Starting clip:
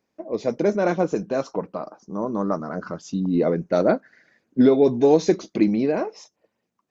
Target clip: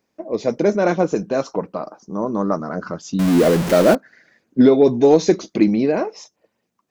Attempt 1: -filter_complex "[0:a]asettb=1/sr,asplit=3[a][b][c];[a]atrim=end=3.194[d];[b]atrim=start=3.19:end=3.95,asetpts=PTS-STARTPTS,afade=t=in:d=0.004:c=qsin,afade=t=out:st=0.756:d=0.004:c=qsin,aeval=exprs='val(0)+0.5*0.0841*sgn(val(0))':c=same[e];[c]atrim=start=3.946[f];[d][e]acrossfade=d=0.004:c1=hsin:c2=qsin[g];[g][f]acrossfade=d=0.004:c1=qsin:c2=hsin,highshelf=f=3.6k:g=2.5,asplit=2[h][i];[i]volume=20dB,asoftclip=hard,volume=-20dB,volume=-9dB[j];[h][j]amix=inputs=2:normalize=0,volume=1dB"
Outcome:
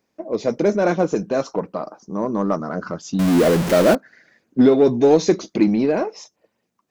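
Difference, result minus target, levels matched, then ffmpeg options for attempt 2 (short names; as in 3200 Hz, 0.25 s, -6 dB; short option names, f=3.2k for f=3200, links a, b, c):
overloaded stage: distortion +17 dB
-filter_complex "[0:a]asettb=1/sr,asplit=3[a][b][c];[a]atrim=end=3.194[d];[b]atrim=start=3.19:end=3.95,asetpts=PTS-STARTPTS,afade=t=in:d=0.004:c=qsin,afade=t=out:st=0.756:d=0.004:c=qsin,aeval=exprs='val(0)+0.5*0.0841*sgn(val(0))':c=same[e];[c]atrim=start=3.946[f];[d][e]acrossfade=d=0.004:c1=hsin:c2=qsin[g];[g][f]acrossfade=d=0.004:c1=qsin:c2=hsin,highshelf=f=3.6k:g=2.5,asplit=2[h][i];[i]volume=9dB,asoftclip=hard,volume=-9dB,volume=-9dB[j];[h][j]amix=inputs=2:normalize=0,volume=1dB"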